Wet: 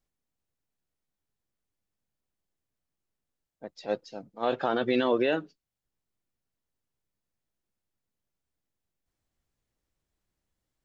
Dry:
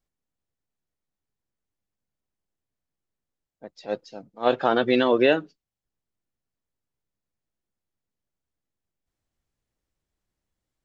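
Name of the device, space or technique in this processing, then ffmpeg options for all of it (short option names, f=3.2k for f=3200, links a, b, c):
stacked limiters: -af "alimiter=limit=-11.5dB:level=0:latency=1:release=15,alimiter=limit=-15.5dB:level=0:latency=1:release=394"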